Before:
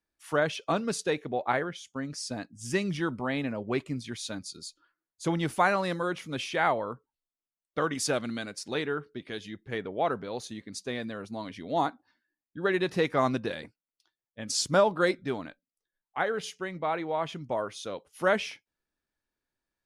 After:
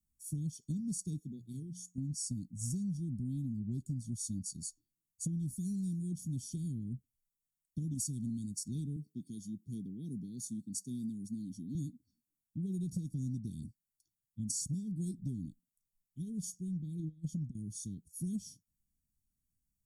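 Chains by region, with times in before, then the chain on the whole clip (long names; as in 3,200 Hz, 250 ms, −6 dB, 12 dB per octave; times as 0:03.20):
0:01.19–0:01.98: low-shelf EQ 220 Hz −12 dB + mains-hum notches 60/120/180 Hz
0:08.96–0:11.75: high-pass filter 200 Hz + high-shelf EQ 11,000 Hz +2.5 dB
0:16.99–0:17.55: compressor whose output falls as the input rises −35 dBFS, ratio −0.5 + high-shelf EQ 7,700 Hz −4 dB
whole clip: inverse Chebyshev band-stop filter 800–2,000 Hz, stop band 80 dB; comb filter 0.9 ms, depth 95%; downward compressor 10 to 1, threshold −37 dBFS; level +3 dB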